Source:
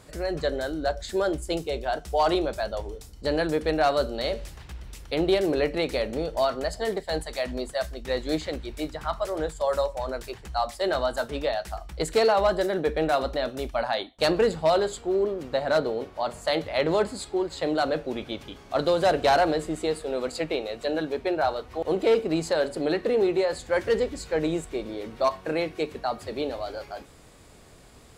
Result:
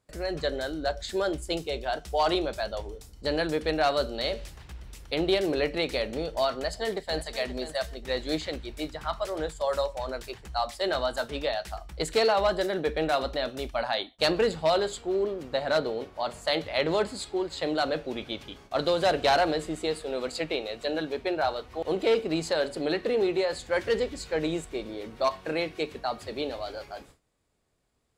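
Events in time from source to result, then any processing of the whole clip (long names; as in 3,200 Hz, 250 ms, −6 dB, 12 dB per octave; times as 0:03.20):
0:06.54–0:07.26: delay throw 530 ms, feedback 25%, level −12.5 dB
whole clip: noise gate with hold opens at −37 dBFS; dynamic equaliser 3,400 Hz, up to +5 dB, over −45 dBFS, Q 0.72; level −3 dB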